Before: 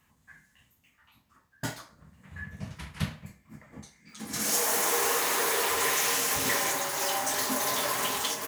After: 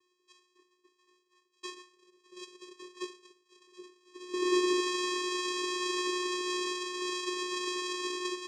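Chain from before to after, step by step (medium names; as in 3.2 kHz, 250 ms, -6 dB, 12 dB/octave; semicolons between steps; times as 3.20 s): bit-reversed sample order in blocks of 256 samples; 3.66–4.80 s: peaking EQ 190 Hz +12.5 dB 2.7 oct; vocoder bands 4, square 361 Hz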